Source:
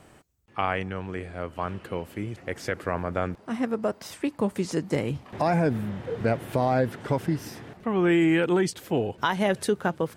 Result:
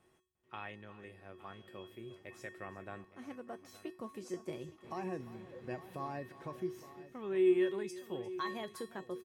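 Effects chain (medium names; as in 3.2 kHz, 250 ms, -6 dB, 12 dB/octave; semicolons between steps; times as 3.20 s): tape speed +10%; feedback comb 370 Hz, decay 0.35 s, harmonics odd, mix 90%; multi-tap echo 351/866 ms -17/-16 dB; trim -1 dB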